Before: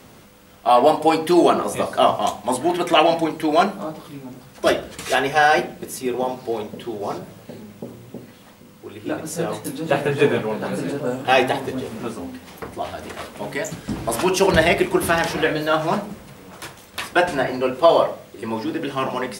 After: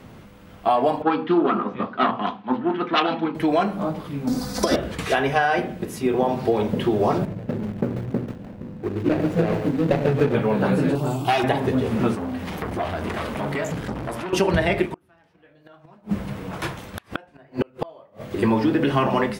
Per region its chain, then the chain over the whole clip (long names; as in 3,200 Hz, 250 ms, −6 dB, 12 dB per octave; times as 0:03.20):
0:01.02–0:03.35: phase distortion by the signal itself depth 0.14 ms + loudspeaker in its box 200–3,700 Hz, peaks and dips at 230 Hz +9 dB, 620 Hz −10 dB, 1,300 Hz +7 dB, 2,100 Hz −3 dB + multiband upward and downward expander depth 100%
0:04.27–0:04.76: high shelf with overshoot 3,700 Hz +9 dB, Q 3 + comb filter 4 ms, depth 63% + compressor whose output falls as the input rises −22 dBFS
0:07.25–0:10.35: running median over 41 samples + low-shelf EQ 460 Hz −3.5 dB + feedback echo at a low word length 140 ms, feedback 35%, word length 7 bits, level −9 dB
0:10.95–0:11.44: high-shelf EQ 3,200 Hz +10.5 dB + phaser with its sweep stopped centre 340 Hz, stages 8 + saturating transformer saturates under 1,700 Hz
0:12.15–0:14.33: downward compressor 2.5 to 1, threshold −35 dBFS + saturating transformer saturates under 1,300 Hz
0:14.86–0:18.31: flanger 1.1 Hz, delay 5.6 ms, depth 5.3 ms, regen +74% + gate with flip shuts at −20 dBFS, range −38 dB
whole clip: automatic gain control; bass and treble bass +6 dB, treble −10 dB; downward compressor, threshold −16 dBFS